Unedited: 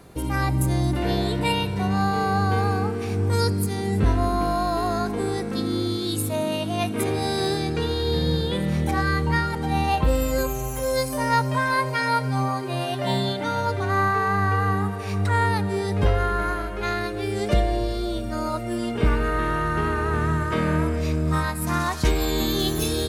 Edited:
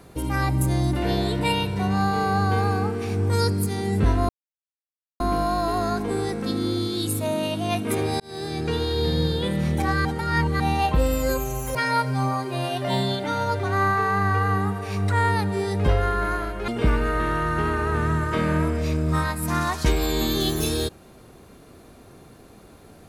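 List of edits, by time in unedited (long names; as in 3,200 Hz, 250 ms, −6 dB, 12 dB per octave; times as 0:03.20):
0:04.29: splice in silence 0.91 s
0:07.29–0:07.79: fade in
0:09.14–0:09.69: reverse
0:10.84–0:11.92: remove
0:16.85–0:18.87: remove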